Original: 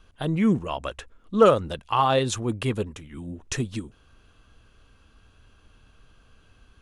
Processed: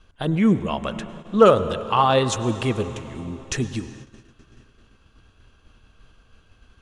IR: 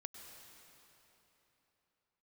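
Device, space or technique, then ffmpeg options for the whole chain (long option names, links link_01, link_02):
keyed gated reverb: -filter_complex "[0:a]asplit=3[link_01][link_02][link_03];[1:a]atrim=start_sample=2205[link_04];[link_02][link_04]afir=irnorm=-1:irlink=0[link_05];[link_03]apad=whole_len=300373[link_06];[link_05][link_06]sidechaingate=range=-33dB:threshold=-53dB:ratio=16:detection=peak,volume=1.5dB[link_07];[link_01][link_07]amix=inputs=2:normalize=0,lowpass=9000,bandreject=frequency=142.8:width_type=h:width=4,bandreject=frequency=285.6:width_type=h:width=4,bandreject=frequency=428.4:width_type=h:width=4,bandreject=frequency=571.2:width_type=h:width=4,bandreject=frequency=714:width_type=h:width=4,bandreject=frequency=856.8:width_type=h:width=4,bandreject=frequency=999.6:width_type=h:width=4,bandreject=frequency=1142.4:width_type=h:width=4,bandreject=frequency=1285.2:width_type=h:width=4,bandreject=frequency=1428:width_type=h:width=4,bandreject=frequency=1570.8:width_type=h:width=4,bandreject=frequency=1713.6:width_type=h:width=4,bandreject=frequency=1856.4:width_type=h:width=4,bandreject=frequency=1999.2:width_type=h:width=4,volume=-1dB"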